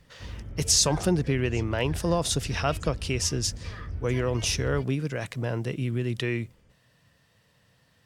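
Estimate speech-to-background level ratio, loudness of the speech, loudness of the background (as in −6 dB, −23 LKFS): 11.0 dB, −27.0 LKFS, −38.0 LKFS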